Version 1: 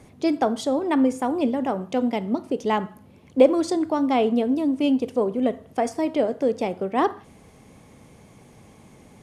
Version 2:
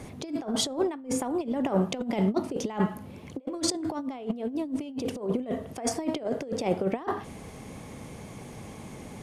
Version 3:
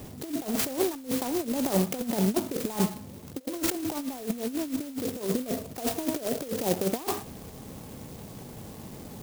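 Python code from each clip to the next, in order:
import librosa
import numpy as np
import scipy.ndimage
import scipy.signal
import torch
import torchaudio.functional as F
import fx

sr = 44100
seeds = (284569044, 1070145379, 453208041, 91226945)

y1 = fx.over_compress(x, sr, threshold_db=-28.0, ratio=-0.5)
y2 = fx.clock_jitter(y1, sr, seeds[0], jitter_ms=0.13)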